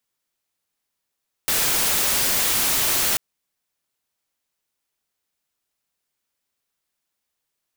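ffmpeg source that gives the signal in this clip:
-f lavfi -i "anoisesrc=c=white:a=0.163:d=1.69:r=44100:seed=1"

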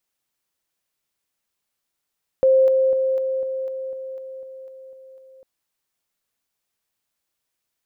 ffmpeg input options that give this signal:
-f lavfi -i "aevalsrc='pow(10,(-11.5-3*floor(t/0.25))/20)*sin(2*PI*527*t)':d=3:s=44100"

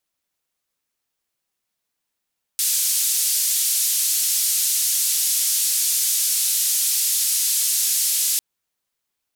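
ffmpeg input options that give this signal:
-f lavfi -i "anoisesrc=c=white:d=5.8:r=44100:seed=1,highpass=f=5100,lowpass=f=13000,volume=-11dB"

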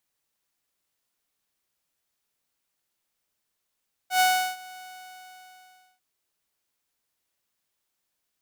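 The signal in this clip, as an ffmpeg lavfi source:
-f lavfi -i "aevalsrc='0.188*(2*mod(740*t,1)-1)':d=1.9:s=44100,afade=t=in:d=0.101,afade=t=out:st=0.101:d=0.359:silence=0.0668,afade=t=out:st=0.68:d=1.22"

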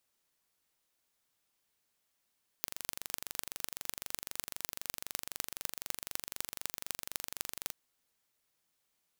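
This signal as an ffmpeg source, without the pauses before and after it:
-f lavfi -i "aevalsrc='0.501*eq(mod(n,1845),0)*(0.5+0.5*eq(mod(n,11070),0))':d=5.08:s=44100"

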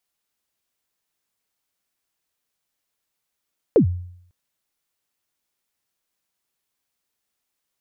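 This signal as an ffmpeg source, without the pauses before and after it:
-f lavfi -i "aevalsrc='0.398*pow(10,-3*t/0.67)*sin(2*PI*(530*0.099/log(89/530)*(exp(log(89/530)*min(t,0.099)/0.099)-1)+89*max(t-0.099,0)))':d=0.55:s=44100"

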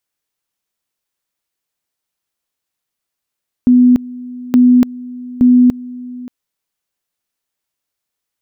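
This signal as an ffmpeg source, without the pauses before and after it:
-f lavfi -i "aevalsrc='pow(10,(-4.5-20.5*gte(mod(t,0.87),0.29))/20)*sin(2*PI*248*t)':d=2.61:s=44100"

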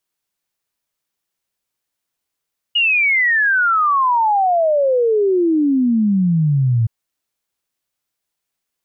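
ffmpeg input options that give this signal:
-f lavfi -i "aevalsrc='0.251*clip(min(t,4.12-t)/0.01,0,1)*sin(2*PI*2900*4.12/log(110/2900)*(exp(log(110/2900)*t/4.12)-1))':d=4.12:s=44100"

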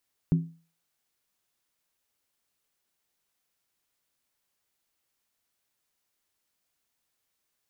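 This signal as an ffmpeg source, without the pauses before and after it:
-f lavfi -i "aevalsrc='0.158*pow(10,-3*t/0.37)*sin(2*PI*165*t)+0.0501*pow(10,-3*t/0.293)*sin(2*PI*263*t)+0.0158*pow(10,-3*t/0.253)*sin(2*PI*352.4*t)+0.00501*pow(10,-3*t/0.244)*sin(2*PI*378.8*t)+0.00158*pow(10,-3*t/0.227)*sin(2*PI*437.7*t)':d=0.63:s=44100"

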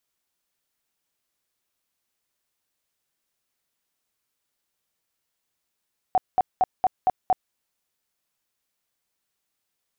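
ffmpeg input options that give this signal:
-f lavfi -i "aevalsrc='0.178*sin(2*PI*748*mod(t,0.23))*lt(mod(t,0.23),21/748)':d=1.38:s=44100"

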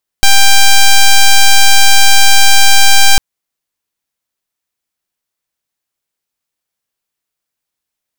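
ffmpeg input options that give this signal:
-f lavfi -i "aevalsrc='0.668*(2*lt(mod(790*t,1),0.06)-1)':d=2.95:s=44100"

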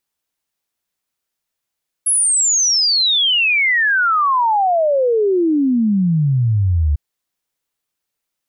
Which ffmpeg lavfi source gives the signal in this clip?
-f lavfi -i "aevalsrc='0.251*clip(min(t,4.9-t)/0.01,0,1)*sin(2*PI*11000*4.9/log(70/11000)*(exp(log(70/11000)*t/4.9)-1))':d=4.9:s=44100"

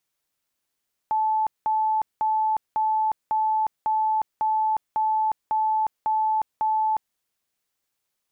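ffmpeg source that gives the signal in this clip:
-f lavfi -i "aevalsrc='0.106*sin(2*PI*870*mod(t,0.55))*lt(mod(t,0.55),311/870)':d=6.05:s=44100"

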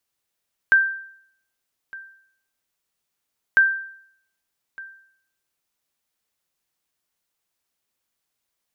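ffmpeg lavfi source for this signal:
-f lavfi -i "aevalsrc='0.376*(sin(2*PI*1570*mod(t,2.85))*exp(-6.91*mod(t,2.85)/0.65)+0.0794*sin(2*PI*1570*max(mod(t,2.85)-1.21,0))*exp(-6.91*max(mod(t,2.85)-1.21,0)/0.65))':d=5.7:s=44100"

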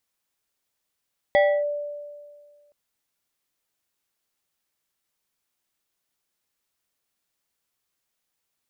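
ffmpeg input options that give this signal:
-f lavfi -i "aevalsrc='0.224*pow(10,-3*t/1.83)*sin(2*PI*585*t+0.86*clip(1-t/0.29,0,1)*sin(2*PI*2.35*585*t))':d=1.37:s=44100"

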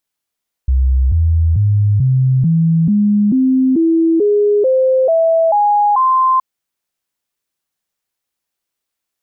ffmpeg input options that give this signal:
-f lavfi -i "aevalsrc='0.355*clip(min(mod(t,0.44),0.44-mod(t,0.44))/0.005,0,1)*sin(2*PI*65.1*pow(2,floor(t/0.44)/3)*mod(t,0.44))':d=5.72:s=44100"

